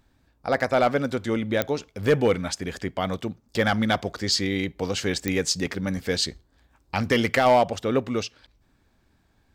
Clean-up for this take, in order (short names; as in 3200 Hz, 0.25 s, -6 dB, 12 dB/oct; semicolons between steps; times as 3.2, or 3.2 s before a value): clip repair -11.5 dBFS; de-click